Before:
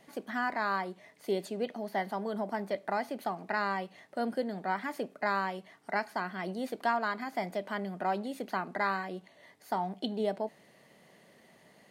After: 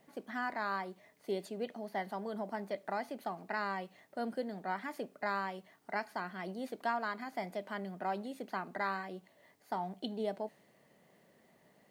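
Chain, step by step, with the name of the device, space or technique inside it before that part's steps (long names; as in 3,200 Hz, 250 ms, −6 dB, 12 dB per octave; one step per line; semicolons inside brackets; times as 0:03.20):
plain cassette with noise reduction switched in (one half of a high-frequency compander decoder only; tape wow and flutter 20 cents; white noise bed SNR 39 dB)
level −5 dB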